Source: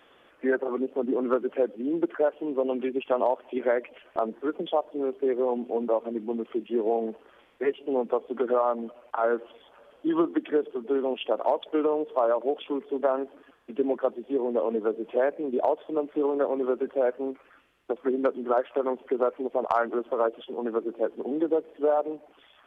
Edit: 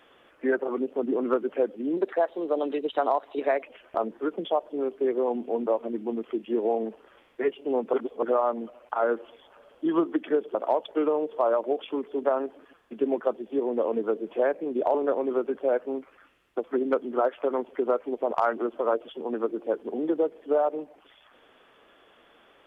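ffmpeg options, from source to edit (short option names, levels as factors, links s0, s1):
-filter_complex "[0:a]asplit=7[s0][s1][s2][s3][s4][s5][s6];[s0]atrim=end=1.974[s7];[s1]atrim=start=1.97:end=3.84,asetpts=PTS-STARTPTS,asetrate=49833,aresample=44100[s8];[s2]atrim=start=3.836:end=8.152[s9];[s3]atrim=start=8.148:end=8.442,asetpts=PTS-STARTPTS,areverse[s10];[s4]atrim=start=8.438:end=10.762[s11];[s5]atrim=start=11.318:end=15.722[s12];[s6]atrim=start=16.268[s13];[s7][s8]acrossfade=d=0.004:c1=hsin:c2=hsin[s14];[s14][s9]acrossfade=d=0.004:c1=hsin:c2=hsin[s15];[s15][s10]acrossfade=d=0.004:c1=hsin:c2=hsin[s16];[s16][s11]acrossfade=d=0.004:c1=hsin:c2=hsin[s17];[s17][s12]acrossfade=d=0.004:c1=hsin:c2=hsin[s18];[s18][s13]acrossfade=d=0.004:c1=hsin:c2=hsin"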